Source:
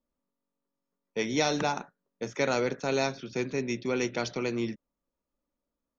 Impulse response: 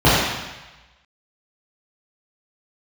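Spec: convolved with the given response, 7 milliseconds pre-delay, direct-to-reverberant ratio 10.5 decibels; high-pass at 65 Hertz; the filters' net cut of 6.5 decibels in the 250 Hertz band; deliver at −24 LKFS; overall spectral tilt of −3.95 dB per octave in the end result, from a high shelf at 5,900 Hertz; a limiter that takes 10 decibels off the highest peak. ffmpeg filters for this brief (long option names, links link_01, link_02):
-filter_complex "[0:a]highpass=65,equalizer=frequency=250:width_type=o:gain=-8.5,highshelf=frequency=5900:gain=5,alimiter=limit=-23dB:level=0:latency=1,asplit=2[link_01][link_02];[1:a]atrim=start_sample=2205,adelay=7[link_03];[link_02][link_03]afir=irnorm=-1:irlink=0,volume=-37.5dB[link_04];[link_01][link_04]amix=inputs=2:normalize=0,volume=11dB"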